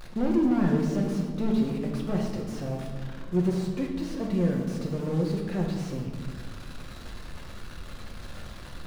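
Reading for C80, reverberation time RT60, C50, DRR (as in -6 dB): 6.0 dB, 1.7 s, 4.0 dB, -0.5 dB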